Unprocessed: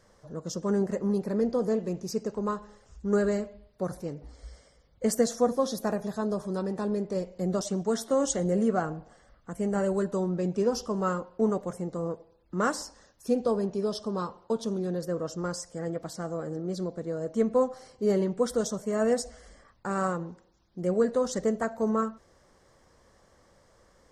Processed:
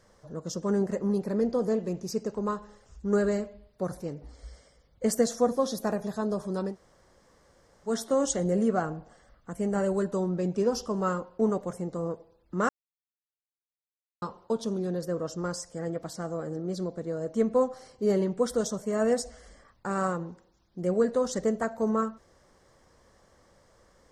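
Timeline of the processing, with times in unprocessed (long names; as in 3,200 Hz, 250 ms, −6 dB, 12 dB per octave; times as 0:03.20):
0:06.72–0:07.88: fill with room tone, crossfade 0.10 s
0:12.69–0:14.22: silence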